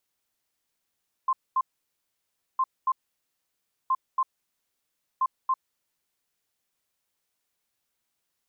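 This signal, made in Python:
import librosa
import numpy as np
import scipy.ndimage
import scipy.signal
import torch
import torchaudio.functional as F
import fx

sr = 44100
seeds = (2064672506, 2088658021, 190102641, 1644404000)

y = fx.beep_pattern(sr, wave='sine', hz=1050.0, on_s=0.05, off_s=0.23, beeps=2, pause_s=0.98, groups=4, level_db=-20.0)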